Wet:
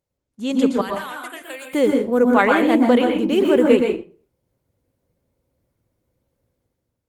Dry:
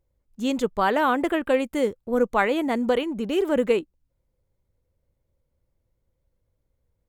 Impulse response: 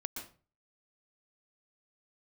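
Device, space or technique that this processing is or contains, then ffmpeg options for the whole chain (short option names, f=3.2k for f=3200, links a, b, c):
far-field microphone of a smart speaker: -filter_complex "[0:a]asettb=1/sr,asplit=3[a][b][c];[a]atrim=end=0.814[d];[b]atrim=start=0.81:end=1.72,asetpts=PTS-STARTPTS,afade=t=in:d=0.004:c=qsin,afade=t=out:st=0.906:d=0.004:c=qsin,aderivative[e];[c]atrim=start=1.716[f];[d][e]acrossfade=d=0.004:c1=hsin:c2=qsin[g];[g][f]acrossfade=d=0.004:c1=qsin:c2=hsin[h];[1:a]atrim=start_sample=2205[i];[h][i]afir=irnorm=-1:irlink=0,highpass=98,dynaudnorm=f=120:g=9:m=9dB" -ar 48000 -c:a libopus -b:a 24k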